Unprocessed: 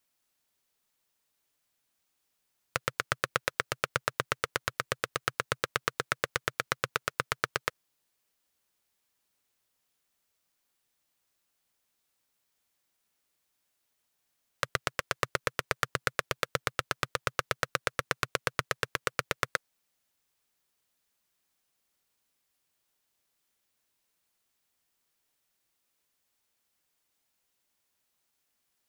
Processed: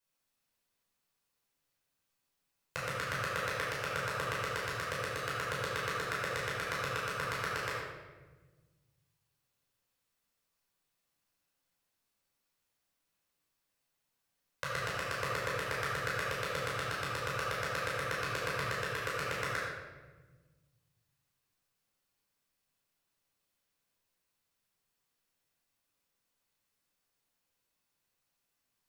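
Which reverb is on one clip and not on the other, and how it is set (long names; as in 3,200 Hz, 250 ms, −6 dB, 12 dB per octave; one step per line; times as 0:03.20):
rectangular room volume 930 cubic metres, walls mixed, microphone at 5.1 metres
level −12.5 dB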